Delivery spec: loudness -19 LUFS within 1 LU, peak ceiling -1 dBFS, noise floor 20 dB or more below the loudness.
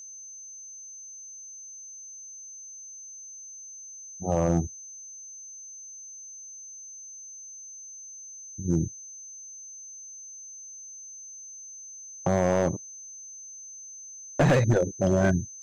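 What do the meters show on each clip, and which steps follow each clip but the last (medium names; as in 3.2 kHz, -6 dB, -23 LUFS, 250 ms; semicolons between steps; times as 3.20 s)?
clipped samples 0.5%; clipping level -16.0 dBFS; steady tone 6.2 kHz; tone level -41 dBFS; loudness -31.5 LUFS; peak level -16.0 dBFS; loudness target -19.0 LUFS
-> clip repair -16 dBFS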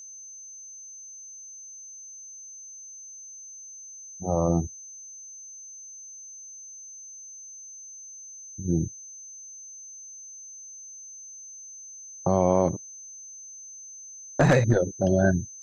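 clipped samples 0.0%; steady tone 6.2 kHz; tone level -41 dBFS
-> band-stop 6.2 kHz, Q 30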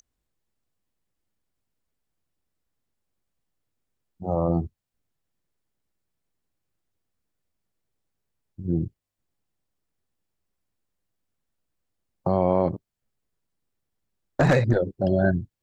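steady tone not found; loudness -24.0 LUFS; peak level -7.5 dBFS; loudness target -19.0 LUFS
-> trim +5 dB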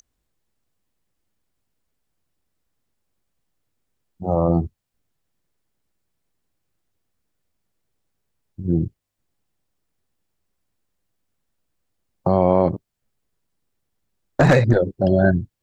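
loudness -19.0 LUFS; peak level -2.5 dBFS; noise floor -78 dBFS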